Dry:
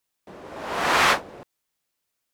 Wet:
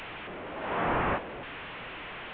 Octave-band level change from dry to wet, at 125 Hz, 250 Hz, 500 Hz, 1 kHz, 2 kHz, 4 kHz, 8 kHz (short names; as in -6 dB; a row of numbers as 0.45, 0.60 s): +3.0 dB, -0.5 dB, -3.5 dB, -7.0 dB, -10.0 dB, -14.5 dB, under -40 dB